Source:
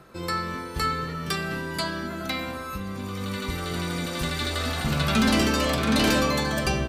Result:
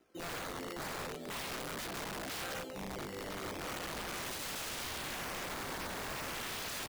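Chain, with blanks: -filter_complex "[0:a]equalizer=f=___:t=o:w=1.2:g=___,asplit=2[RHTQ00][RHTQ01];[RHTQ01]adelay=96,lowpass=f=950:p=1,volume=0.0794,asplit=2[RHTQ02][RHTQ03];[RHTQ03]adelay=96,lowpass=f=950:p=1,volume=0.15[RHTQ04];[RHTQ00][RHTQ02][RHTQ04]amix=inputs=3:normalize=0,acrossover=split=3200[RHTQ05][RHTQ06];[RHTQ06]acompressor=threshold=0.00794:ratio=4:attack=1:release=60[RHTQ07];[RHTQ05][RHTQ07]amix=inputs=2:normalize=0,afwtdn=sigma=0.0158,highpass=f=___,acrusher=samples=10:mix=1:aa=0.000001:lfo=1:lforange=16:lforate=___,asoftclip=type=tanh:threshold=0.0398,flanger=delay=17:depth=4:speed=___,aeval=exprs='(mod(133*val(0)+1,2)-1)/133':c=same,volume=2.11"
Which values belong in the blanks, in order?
1100, -13.5, 430, 0.39, 1.2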